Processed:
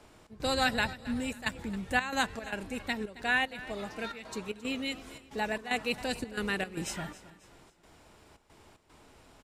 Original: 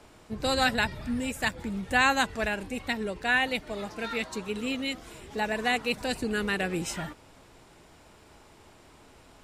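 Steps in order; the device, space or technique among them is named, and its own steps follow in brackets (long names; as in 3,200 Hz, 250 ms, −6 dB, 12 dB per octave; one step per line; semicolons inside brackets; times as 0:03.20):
trance gate with a delay (gate pattern "xx.xxxx." 113 BPM −12 dB; repeating echo 270 ms, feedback 40%, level −17.5 dB)
level −3 dB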